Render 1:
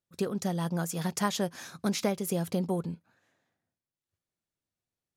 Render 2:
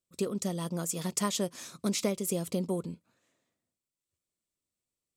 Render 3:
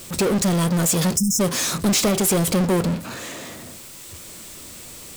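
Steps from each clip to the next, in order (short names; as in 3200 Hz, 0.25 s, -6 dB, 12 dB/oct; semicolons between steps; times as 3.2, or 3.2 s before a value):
thirty-one-band EQ 100 Hz -7 dB, 160 Hz -5 dB, 800 Hz -10 dB, 1600 Hz -11 dB, 8000 Hz +9 dB
power-law curve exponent 0.35; spectral delete 1.17–1.4, 290–5100 Hz; de-hum 131.3 Hz, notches 6; gain +3.5 dB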